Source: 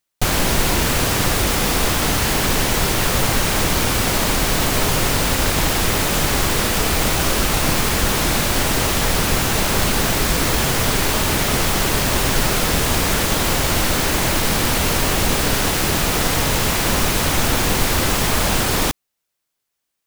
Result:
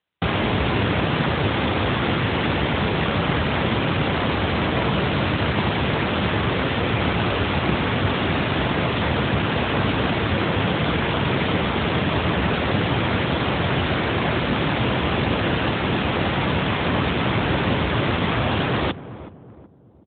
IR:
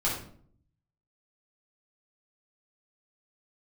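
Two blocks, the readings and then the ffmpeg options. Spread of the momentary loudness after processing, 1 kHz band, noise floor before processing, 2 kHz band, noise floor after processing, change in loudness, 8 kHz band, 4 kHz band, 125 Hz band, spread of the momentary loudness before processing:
1 LU, -2.0 dB, -78 dBFS, -2.5 dB, -41 dBFS, -4.0 dB, under -40 dB, -6.0 dB, 0.0 dB, 0 LU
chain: -filter_complex "[0:a]afreqshift=44,asplit=2[a][b];[b]adelay=374,lowpass=f=850:p=1,volume=-14dB,asplit=2[c][d];[d]adelay=374,lowpass=f=850:p=1,volume=0.45,asplit=2[e][f];[f]adelay=374,lowpass=f=850:p=1,volume=0.45,asplit=2[g][h];[h]adelay=374,lowpass=f=850:p=1,volume=0.45[i];[a][c][e][g][i]amix=inputs=5:normalize=0" -ar 8000 -c:a libopencore_amrnb -b:a 12200

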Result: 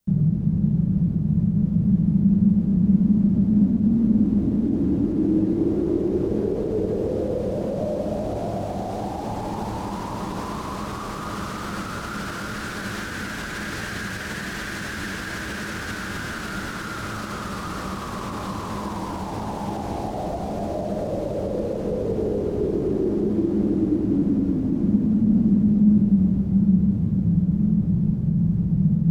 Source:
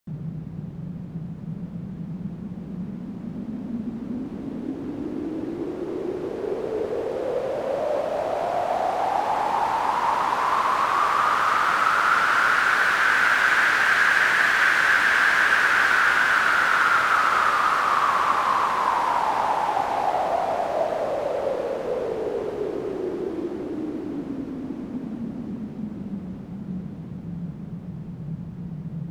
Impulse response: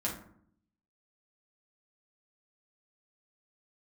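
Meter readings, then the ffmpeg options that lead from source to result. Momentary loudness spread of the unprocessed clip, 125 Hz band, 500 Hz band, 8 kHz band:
17 LU, +13.5 dB, 0.0 dB, -1.5 dB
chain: -filter_complex "[0:a]bass=f=250:g=9,treble=f=4k:g=6,acrossover=split=650|7900[a][b][c];[a]acontrast=83[d];[d][b][c]amix=inputs=3:normalize=0,alimiter=limit=-12.5dB:level=0:latency=1,acrossover=split=480|3000[e][f][g];[f]acompressor=threshold=-29dB:ratio=10[h];[e][h][g]amix=inputs=3:normalize=0,asplit=2[i][j];[1:a]atrim=start_sample=2205,lowshelf=f=410:g=8[k];[j][k]afir=irnorm=-1:irlink=0,volume=-11dB[l];[i][l]amix=inputs=2:normalize=0,volume=-6dB"

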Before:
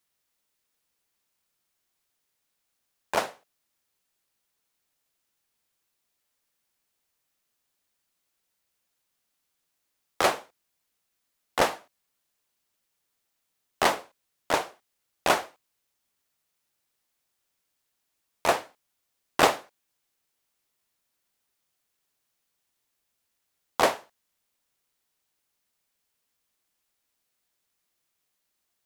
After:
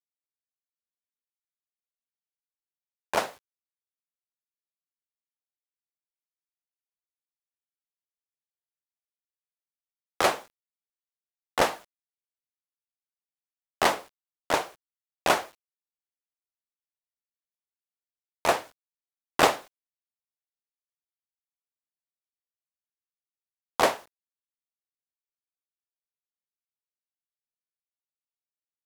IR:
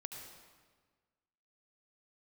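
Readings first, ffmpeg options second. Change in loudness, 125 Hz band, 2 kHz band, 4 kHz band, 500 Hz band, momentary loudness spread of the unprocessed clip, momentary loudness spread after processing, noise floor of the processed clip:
0.0 dB, 0.0 dB, 0.0 dB, 0.0 dB, 0.0 dB, 15 LU, 15 LU, under -85 dBFS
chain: -af "acrusher=bits=8:mix=0:aa=0.000001"

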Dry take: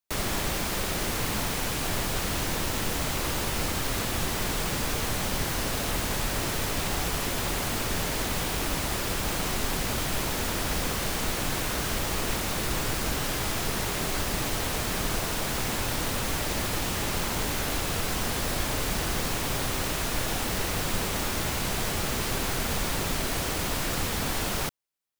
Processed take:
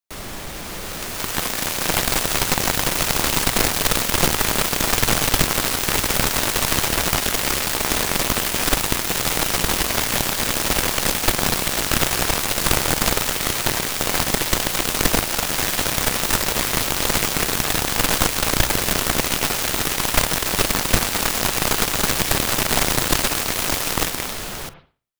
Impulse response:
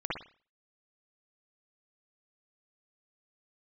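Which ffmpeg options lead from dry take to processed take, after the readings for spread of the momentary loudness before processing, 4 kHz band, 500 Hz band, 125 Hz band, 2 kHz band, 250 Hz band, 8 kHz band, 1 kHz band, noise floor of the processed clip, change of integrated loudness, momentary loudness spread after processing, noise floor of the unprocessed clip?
0 LU, +9.5 dB, +7.0 dB, +4.0 dB, +8.5 dB, +6.0 dB, +10.0 dB, +8.0 dB, -31 dBFS, +9.0 dB, 3 LU, -30 dBFS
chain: -filter_complex "[0:a]asplit=2[a][b];[1:a]atrim=start_sample=2205,adelay=46[c];[b][c]afir=irnorm=-1:irlink=0,volume=-19.5dB[d];[a][d]amix=inputs=2:normalize=0,dynaudnorm=f=240:g=9:m=11dB,aeval=exprs='0.668*(cos(1*acos(clip(val(0)/0.668,-1,1)))-cos(1*PI/2))+0.188*(cos(2*acos(clip(val(0)/0.668,-1,1)))-cos(2*PI/2))+0.168*(cos(7*acos(clip(val(0)/0.668,-1,1)))-cos(7*PI/2))':c=same,bandreject=f=60:t=h:w=6,bandreject=f=120:t=h:w=6"

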